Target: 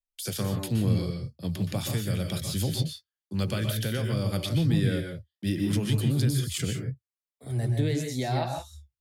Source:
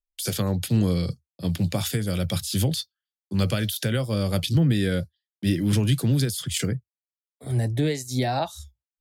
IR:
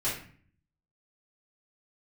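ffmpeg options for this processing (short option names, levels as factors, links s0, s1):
-filter_complex "[0:a]asplit=2[s0][s1];[1:a]atrim=start_sample=2205,atrim=end_sample=3087,adelay=118[s2];[s1][s2]afir=irnorm=-1:irlink=0,volume=0.299[s3];[s0][s3]amix=inputs=2:normalize=0,volume=0.531"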